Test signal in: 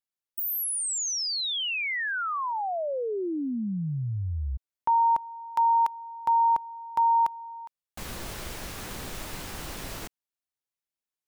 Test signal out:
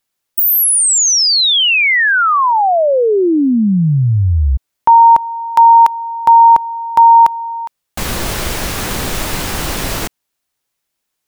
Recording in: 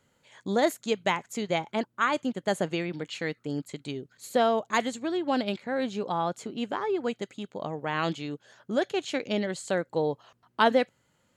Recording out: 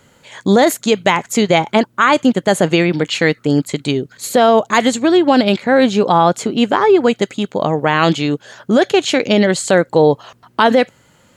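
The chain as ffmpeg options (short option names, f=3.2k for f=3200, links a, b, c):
-af "alimiter=level_in=19dB:limit=-1dB:release=50:level=0:latency=1,volume=-1dB"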